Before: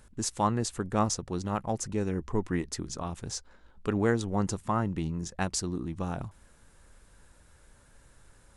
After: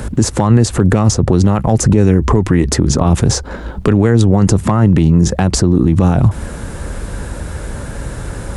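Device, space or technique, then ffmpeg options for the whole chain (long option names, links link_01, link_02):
mastering chain: -filter_complex "[0:a]highpass=40,equalizer=frequency=1000:width_type=o:width=0.77:gain=-2,acrossover=split=120|1600[link_01][link_02][link_03];[link_01]acompressor=threshold=-38dB:ratio=4[link_04];[link_02]acompressor=threshold=-34dB:ratio=4[link_05];[link_03]acompressor=threshold=-42dB:ratio=4[link_06];[link_04][link_05][link_06]amix=inputs=3:normalize=0,acompressor=threshold=-42dB:ratio=1.5,tiltshelf=frequency=1200:gain=5.5,asoftclip=type=hard:threshold=-23dB,alimiter=level_in=33dB:limit=-1dB:release=50:level=0:latency=1,volume=-1dB"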